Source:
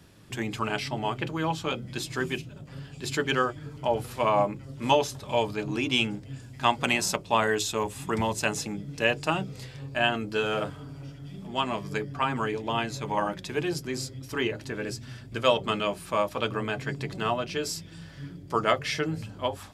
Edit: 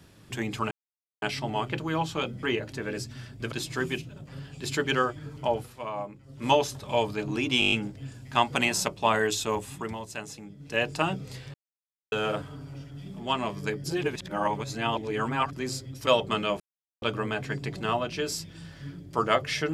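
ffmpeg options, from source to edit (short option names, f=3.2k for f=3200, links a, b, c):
-filter_complex "[0:a]asplit=21[a][b][c][d][e][f][g][h][i][j][k][l][m][n][o][p][q][r][s][t][u];[a]atrim=end=0.71,asetpts=PTS-STARTPTS,afade=t=out:st=0.706:d=0.004:c=hsin,apad=pad_dur=0.51[v];[b]atrim=start=0.71:end=1.922,asetpts=PTS-STARTPTS,afade=t=in:d=0.004:c=hsin[w];[c]atrim=start=14.348:end=15.442[x];[d]atrim=start=1.918:end=4.13,asetpts=PTS-STARTPTS,afade=t=out:st=1.962:d=0.25:silence=0.281838[y];[e]atrim=start=4.13:end=4.64,asetpts=PTS-STARTPTS,volume=-11dB[z];[f]atrim=start=4.64:end=6.022,asetpts=PTS-STARTPTS,afade=t=in:d=0.25:silence=0.281838[aa];[g]atrim=start=5.998:end=6.022[ab];[h]atrim=start=5.998:end=6.022[ac];[i]atrim=start=5.998:end=6.022[ad];[j]atrim=start=5.998:end=6.022[ae];[k]atrim=start=5.998:end=6.022[af];[l]atrim=start=5.998:end=8.23,asetpts=PTS-STARTPTS,afade=t=out:st=1.872:d=0.36:silence=0.316228[ag];[m]atrim=start=8.23:end=8.84,asetpts=PTS-STARTPTS,volume=-10dB[ah];[n]atrim=start=8.84:end=9.82,asetpts=PTS-STARTPTS,afade=t=in:d=0.36:silence=0.316228,afade=t=out:st=0.976:d=0.004:c=hsin[ai];[o]atrim=start=9.82:end=10.4,asetpts=PTS-STARTPTS,volume=0[aj];[p]atrim=start=10.4:end=12.122,asetpts=PTS-STARTPTS,afade=t=in:d=0.004:c=hsin[ak];[q]atrim=start=12.118:end=13.812,asetpts=PTS-STARTPTS,areverse[al];[r]atrim=start=13.808:end=14.352[am];[s]atrim=start=15.438:end=15.97,asetpts=PTS-STARTPTS,afade=t=out:st=0.528:d=0.004:c=hsin[an];[t]atrim=start=15.97:end=16.39,asetpts=PTS-STARTPTS,volume=0[ao];[u]atrim=start=16.39,asetpts=PTS-STARTPTS,afade=t=in:d=0.004:c=hsin[ap];[v][w]concat=n=2:v=0:a=1[aq];[aq][x]acrossfade=d=0.004:c1=hsin:c2=hsin[ar];[y][z][aa]concat=n=3:v=0:a=1[as];[ar][as]acrossfade=d=0.004:c1=hsin:c2=hsin[at];[at][ab]acrossfade=d=0.004:c1=hsin:c2=hsin[au];[au][ac]acrossfade=d=0.004:c1=hsin:c2=hsin[av];[av][ad]acrossfade=d=0.004:c1=hsin:c2=hsin[aw];[aw][ae]acrossfade=d=0.004:c1=hsin:c2=hsin[ax];[ax][af]acrossfade=d=0.004:c1=hsin:c2=hsin[ay];[ag][ah][ai][aj][ak]concat=n=5:v=0:a=1[az];[ay][az]acrossfade=d=0.004:c1=hsin:c2=hsin[ba];[ba][al]acrossfade=d=0.004:c1=hsin:c2=hsin[bb];[bb][am]acrossfade=d=0.004:c1=hsin:c2=hsin[bc];[an][ao][ap]concat=n=3:v=0:a=1[bd];[bc][bd]acrossfade=d=0.004:c1=hsin:c2=hsin"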